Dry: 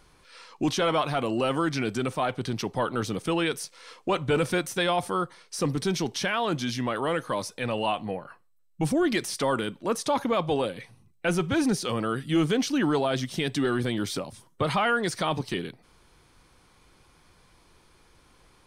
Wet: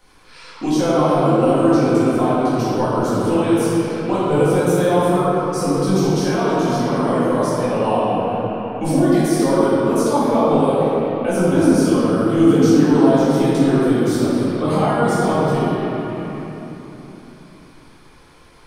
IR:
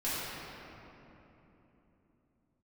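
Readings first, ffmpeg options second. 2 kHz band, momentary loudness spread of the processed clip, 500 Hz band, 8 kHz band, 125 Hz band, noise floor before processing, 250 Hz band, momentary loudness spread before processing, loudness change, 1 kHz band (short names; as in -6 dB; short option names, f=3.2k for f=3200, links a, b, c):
+2.5 dB, 8 LU, +11.5 dB, +5.5 dB, +11.5 dB, -61 dBFS, +13.0 dB, 7 LU, +10.5 dB, +9.0 dB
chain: -filter_complex "[0:a]lowshelf=f=170:g=-6[a];[1:a]atrim=start_sample=2205[b];[a][b]afir=irnorm=-1:irlink=0,acrossover=split=270|1100|5500[c][d][e][f];[e]acompressor=threshold=-42dB:ratio=6[g];[c][d][g][f]amix=inputs=4:normalize=0,volume=4dB"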